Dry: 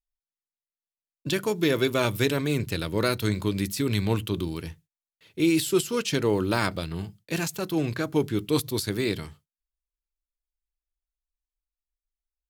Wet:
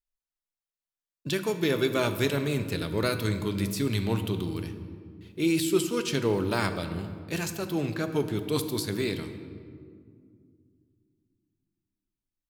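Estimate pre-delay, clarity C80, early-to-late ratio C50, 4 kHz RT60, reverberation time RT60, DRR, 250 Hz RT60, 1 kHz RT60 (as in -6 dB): 5 ms, 10.5 dB, 9.5 dB, 1.2 s, 2.1 s, 8.0 dB, 3.3 s, 1.8 s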